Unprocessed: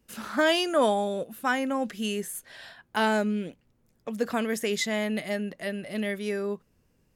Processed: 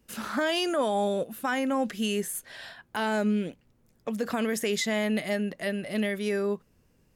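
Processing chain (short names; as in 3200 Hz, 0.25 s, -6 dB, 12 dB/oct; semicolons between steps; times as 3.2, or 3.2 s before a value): limiter -21.5 dBFS, peak gain reduction 8.5 dB; gain +2.5 dB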